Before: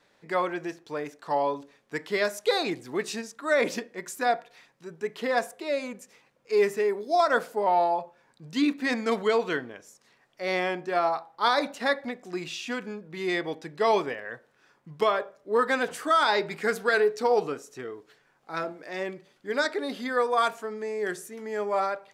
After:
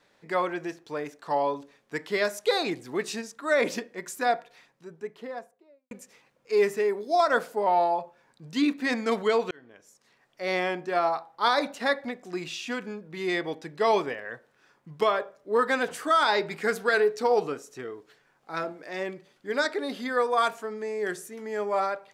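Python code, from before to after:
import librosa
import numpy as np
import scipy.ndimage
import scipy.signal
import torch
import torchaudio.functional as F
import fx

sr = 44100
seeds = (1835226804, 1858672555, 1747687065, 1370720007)

y = fx.studio_fade_out(x, sr, start_s=4.36, length_s=1.55)
y = fx.edit(y, sr, fx.fade_in_span(start_s=9.51, length_s=1.03, curve='qsin'), tone=tone)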